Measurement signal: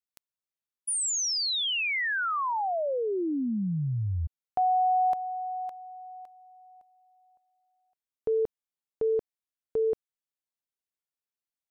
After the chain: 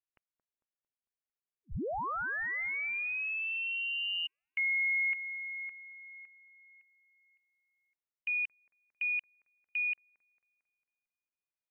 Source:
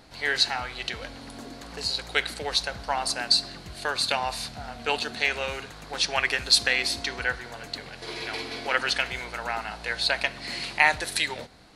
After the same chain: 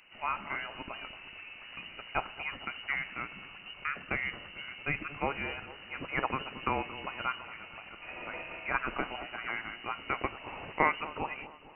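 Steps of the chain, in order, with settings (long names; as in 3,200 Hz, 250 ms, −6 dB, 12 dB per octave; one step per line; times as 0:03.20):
on a send: delay with a high-pass on its return 225 ms, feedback 53%, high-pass 2,200 Hz, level −11 dB
on the sum: voice inversion scrambler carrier 2,900 Hz
level −6.5 dB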